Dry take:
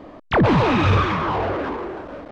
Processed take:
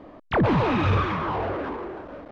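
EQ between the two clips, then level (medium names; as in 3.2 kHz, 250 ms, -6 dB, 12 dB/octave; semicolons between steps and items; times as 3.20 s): treble shelf 5.3 kHz -9 dB; -4.5 dB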